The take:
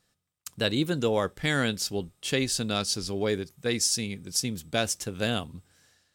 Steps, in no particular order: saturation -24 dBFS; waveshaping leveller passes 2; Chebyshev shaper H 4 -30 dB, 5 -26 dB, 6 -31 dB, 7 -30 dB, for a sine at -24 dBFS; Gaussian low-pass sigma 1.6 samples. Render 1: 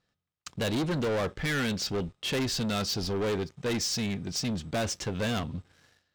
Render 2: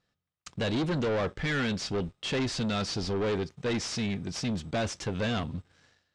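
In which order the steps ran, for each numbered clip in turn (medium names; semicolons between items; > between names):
Gaussian low-pass > Chebyshev shaper > saturation > waveshaping leveller; Chebyshev shaper > waveshaping leveller > saturation > Gaussian low-pass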